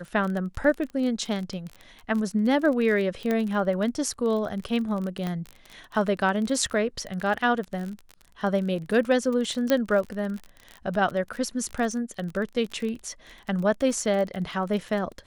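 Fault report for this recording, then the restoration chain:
crackle 27/s -30 dBFS
3.31 pop -14 dBFS
5.27 pop -17 dBFS
9.7 pop -9 dBFS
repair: de-click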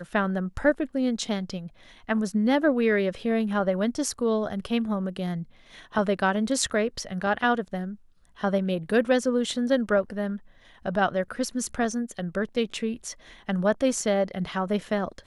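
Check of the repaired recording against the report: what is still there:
5.27 pop

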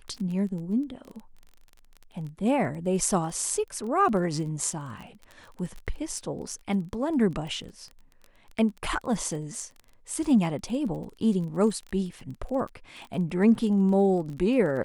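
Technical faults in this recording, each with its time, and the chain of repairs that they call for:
crackle 25/s -35 dBFS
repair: de-click

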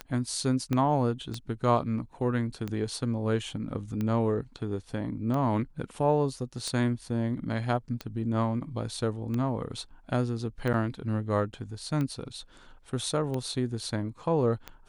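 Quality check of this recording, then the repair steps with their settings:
tick 45 rpm -20 dBFS
0.73 pop -16 dBFS
10.73–10.74 gap 8.6 ms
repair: de-click; interpolate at 10.73, 8.6 ms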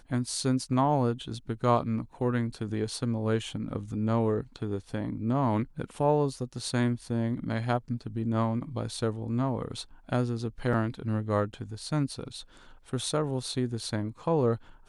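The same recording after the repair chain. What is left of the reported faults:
0.73 pop

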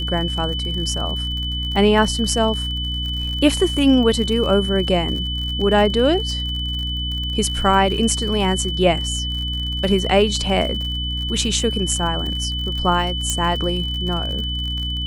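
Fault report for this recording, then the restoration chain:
crackle 54/s -27 dBFS
hum 60 Hz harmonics 5 -26 dBFS
tone 3000 Hz -25 dBFS
13.3 pop -7 dBFS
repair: de-click; de-hum 60 Hz, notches 5; notch 3000 Hz, Q 30

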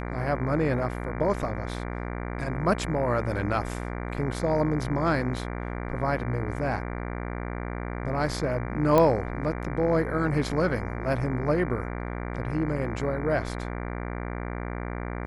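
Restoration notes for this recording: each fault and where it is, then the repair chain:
buzz 60 Hz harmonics 39 -33 dBFS
8.98 pop -9 dBFS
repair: de-click; de-hum 60 Hz, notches 39

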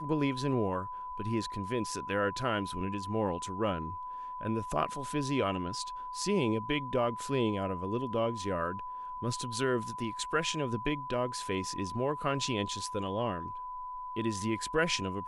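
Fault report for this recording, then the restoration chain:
tone 1000 Hz -38 dBFS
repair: notch 1000 Hz, Q 30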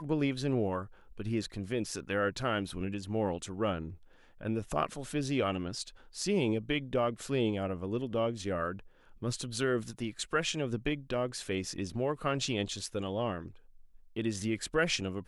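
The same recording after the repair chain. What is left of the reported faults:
none

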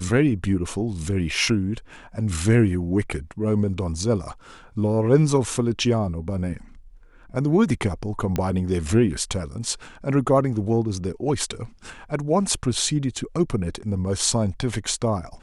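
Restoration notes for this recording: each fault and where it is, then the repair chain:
8.36 pop -11 dBFS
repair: de-click

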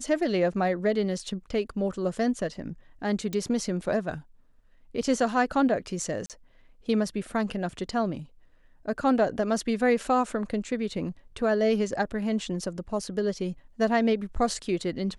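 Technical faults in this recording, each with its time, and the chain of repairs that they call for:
3.33 pop -18 dBFS
6.26–6.3 gap 38 ms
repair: de-click; interpolate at 6.26, 38 ms

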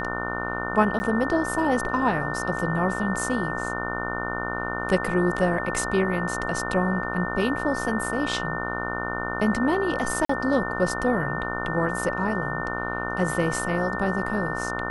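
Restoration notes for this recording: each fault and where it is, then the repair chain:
buzz 60 Hz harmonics 25 -31 dBFS
tone 1800 Hz -31 dBFS
0.99–1 gap 10 ms
10.25–10.29 gap 44 ms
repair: notch 1800 Hz, Q 30; de-hum 60 Hz, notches 25; interpolate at 0.99, 10 ms; interpolate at 10.25, 44 ms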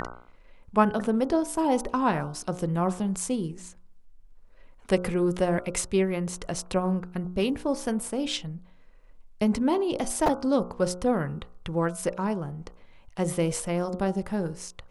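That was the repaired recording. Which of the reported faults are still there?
none

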